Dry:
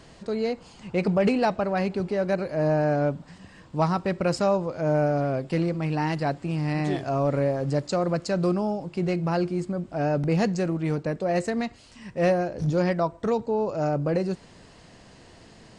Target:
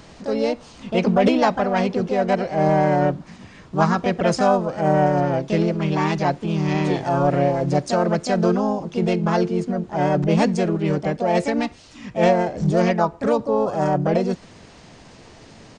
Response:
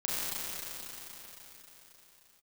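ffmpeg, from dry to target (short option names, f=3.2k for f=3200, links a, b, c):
-filter_complex "[0:a]aresample=16000,aresample=44100,asplit=2[a][b];[b]asetrate=55563,aresample=44100,atempo=0.793701,volume=-3dB[c];[a][c]amix=inputs=2:normalize=0,volume=3.5dB"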